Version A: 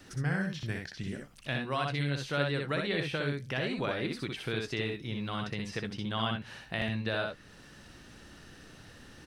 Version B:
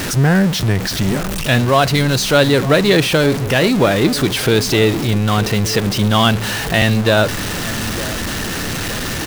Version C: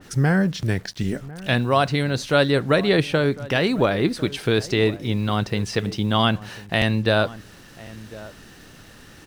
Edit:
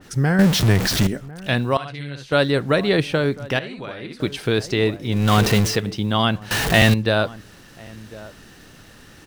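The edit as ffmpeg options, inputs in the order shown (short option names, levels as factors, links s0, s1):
-filter_complex "[1:a]asplit=3[s0][s1][s2];[0:a]asplit=2[s3][s4];[2:a]asplit=6[s5][s6][s7][s8][s9][s10];[s5]atrim=end=0.392[s11];[s0]atrim=start=0.388:end=1.072[s12];[s6]atrim=start=1.068:end=1.772[s13];[s3]atrim=start=1.768:end=2.322[s14];[s7]atrim=start=2.318:end=3.592[s15];[s4]atrim=start=3.588:end=4.202[s16];[s8]atrim=start=4.198:end=5.33[s17];[s1]atrim=start=5.09:end=5.82[s18];[s9]atrim=start=5.58:end=6.512[s19];[s2]atrim=start=6.508:end=6.942[s20];[s10]atrim=start=6.938[s21];[s11][s12]acrossfade=d=0.004:c1=hsin:c2=hsin[s22];[s22][s13]acrossfade=d=0.004:c1=hsin:c2=hsin[s23];[s23][s14]acrossfade=d=0.004:c1=hsin:c2=hsin[s24];[s24][s15]acrossfade=d=0.004:c1=hsin:c2=hsin[s25];[s25][s16]acrossfade=d=0.004:c1=hsin:c2=hsin[s26];[s26][s17]acrossfade=d=0.004:c1=hsin:c2=hsin[s27];[s27][s18]acrossfade=d=0.24:c1=tri:c2=tri[s28];[s28][s19]acrossfade=d=0.24:c1=tri:c2=tri[s29];[s29][s20]acrossfade=d=0.004:c1=hsin:c2=hsin[s30];[s30][s21]acrossfade=d=0.004:c1=hsin:c2=hsin"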